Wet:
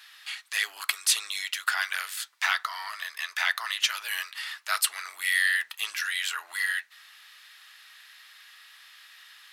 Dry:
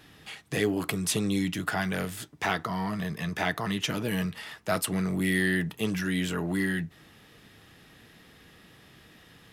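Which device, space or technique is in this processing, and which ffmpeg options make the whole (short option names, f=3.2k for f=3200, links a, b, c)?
headphones lying on a table: -af "highpass=f=1.2k:w=0.5412,highpass=f=1.2k:w=1.3066,equalizer=f=4.3k:t=o:w=0.31:g=5,volume=5.5dB"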